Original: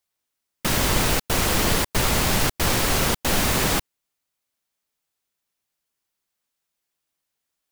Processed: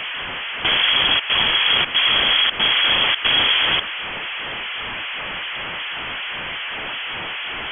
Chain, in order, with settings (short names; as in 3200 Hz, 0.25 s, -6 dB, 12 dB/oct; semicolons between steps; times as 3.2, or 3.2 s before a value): zero-crossing step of -27.5 dBFS; limiter -15.5 dBFS, peak gain reduction 8.5 dB; decimation with a swept rate 11×, swing 60% 2.6 Hz; inverted band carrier 3300 Hz; gain +6.5 dB